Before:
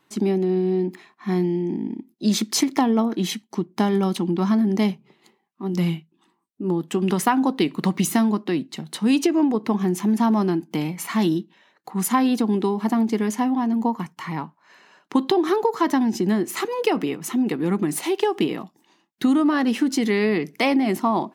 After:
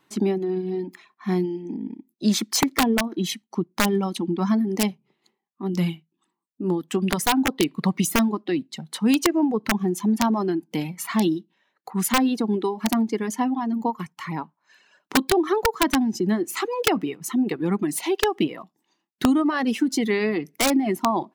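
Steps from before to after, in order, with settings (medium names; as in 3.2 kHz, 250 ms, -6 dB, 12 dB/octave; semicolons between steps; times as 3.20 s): integer overflow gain 10 dB; reverb removal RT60 1.4 s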